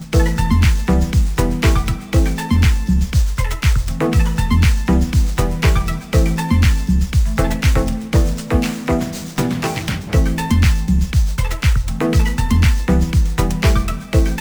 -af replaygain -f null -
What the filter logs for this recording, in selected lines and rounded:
track_gain = +0.9 dB
track_peak = 0.537